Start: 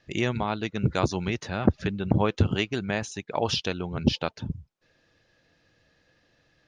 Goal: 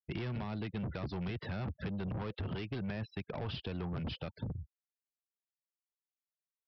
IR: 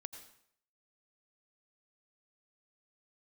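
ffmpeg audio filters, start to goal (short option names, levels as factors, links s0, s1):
-filter_complex "[0:a]asplit=2[s0][s1];[s1]aeval=exprs='0.126*(abs(mod(val(0)/0.126+3,4)-2)-1)':c=same,volume=0.398[s2];[s0][s2]amix=inputs=2:normalize=0,alimiter=limit=0.141:level=0:latency=1:release=53,acrossover=split=4000[s3][s4];[s4]acompressor=threshold=0.00251:ratio=4:attack=1:release=60[s5];[s3][s5]amix=inputs=2:normalize=0,afftfilt=real='re*gte(hypot(re,im),0.0112)':imag='im*gte(hypot(re,im),0.0112)':win_size=1024:overlap=0.75,aresample=11025,asoftclip=type=tanh:threshold=0.0316,aresample=44100,equalizer=f=93:w=0.48:g=7.5,agate=range=0.0224:threshold=0.0126:ratio=3:detection=peak,acrossover=split=200|500[s6][s7][s8];[s6]acompressor=threshold=0.0158:ratio=4[s9];[s7]acompressor=threshold=0.01:ratio=4[s10];[s8]acompressor=threshold=0.01:ratio=4[s11];[s9][s10][s11]amix=inputs=3:normalize=0,volume=0.668"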